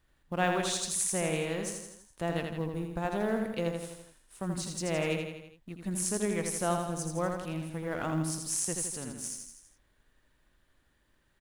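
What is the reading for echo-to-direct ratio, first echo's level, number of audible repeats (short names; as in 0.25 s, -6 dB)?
-3.5 dB, -5.0 dB, 5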